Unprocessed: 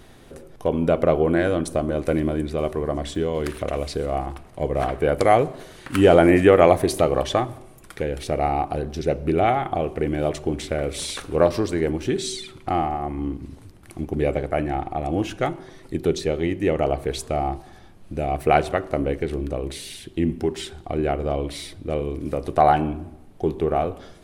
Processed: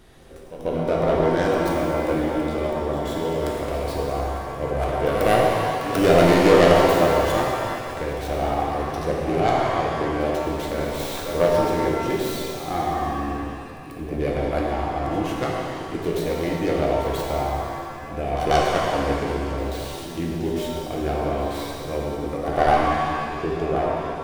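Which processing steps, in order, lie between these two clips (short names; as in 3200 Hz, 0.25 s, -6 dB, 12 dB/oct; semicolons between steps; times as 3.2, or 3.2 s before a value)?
tracing distortion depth 0.32 ms; pre-echo 0.14 s -12.5 dB; shimmer reverb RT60 2.3 s, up +7 st, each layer -8 dB, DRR -2.5 dB; gain -5 dB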